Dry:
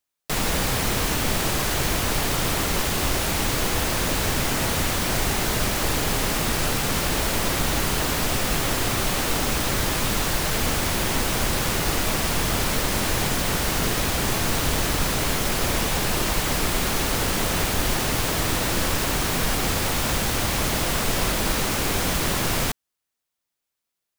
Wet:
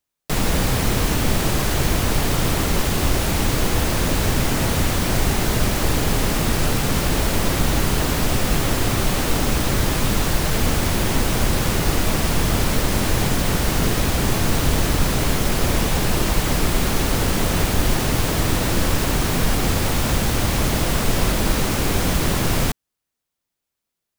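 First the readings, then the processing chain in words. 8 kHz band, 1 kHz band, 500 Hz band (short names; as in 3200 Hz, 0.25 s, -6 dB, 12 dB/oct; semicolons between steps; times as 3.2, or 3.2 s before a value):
0.0 dB, +1.5 dB, +3.0 dB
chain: low shelf 440 Hz +7 dB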